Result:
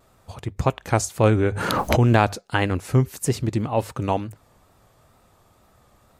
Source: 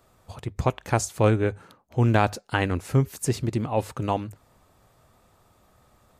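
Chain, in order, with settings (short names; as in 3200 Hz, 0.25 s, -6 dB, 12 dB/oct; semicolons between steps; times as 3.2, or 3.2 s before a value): wow and flutter 65 cents; 1.35–2.43 backwards sustainer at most 28 dB/s; gain +2.5 dB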